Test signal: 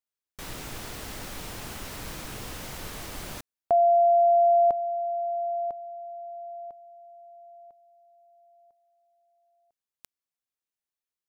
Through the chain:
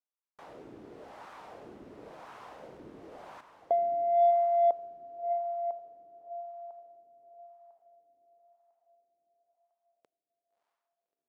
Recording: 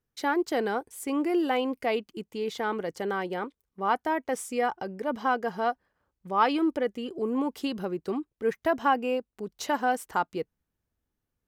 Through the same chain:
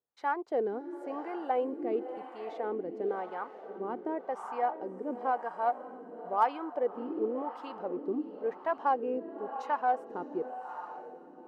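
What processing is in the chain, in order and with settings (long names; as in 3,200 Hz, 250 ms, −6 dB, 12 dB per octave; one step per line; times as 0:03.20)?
feedback delay with all-pass diffusion 623 ms, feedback 54%, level −10 dB
LFO wah 0.95 Hz 320–1,000 Hz, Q 2
harmonic generator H 7 −42 dB, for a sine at −15 dBFS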